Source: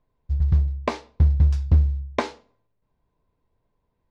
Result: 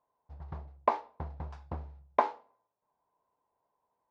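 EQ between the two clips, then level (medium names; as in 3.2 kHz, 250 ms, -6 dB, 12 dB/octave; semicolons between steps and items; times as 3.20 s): band-pass filter 870 Hz, Q 2.4; +4.0 dB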